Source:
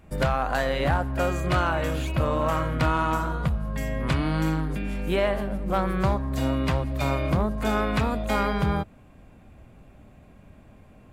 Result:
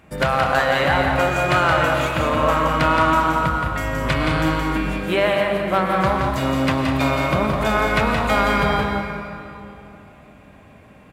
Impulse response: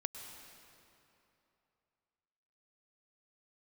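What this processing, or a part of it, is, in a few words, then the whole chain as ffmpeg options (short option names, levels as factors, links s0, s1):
stadium PA: -filter_complex "[0:a]highpass=f=130:p=1,equalizer=f=2000:t=o:w=2.4:g=5,aecho=1:1:172|207:0.562|0.282[s0];[1:a]atrim=start_sample=2205[s1];[s0][s1]afir=irnorm=-1:irlink=0,volume=1.78"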